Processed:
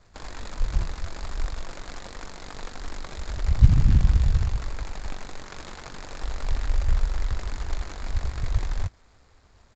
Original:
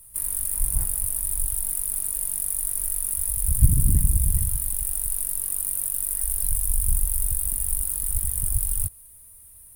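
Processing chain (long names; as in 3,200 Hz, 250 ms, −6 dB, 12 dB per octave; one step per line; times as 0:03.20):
running median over 15 samples
downsampling to 16,000 Hz
level +2 dB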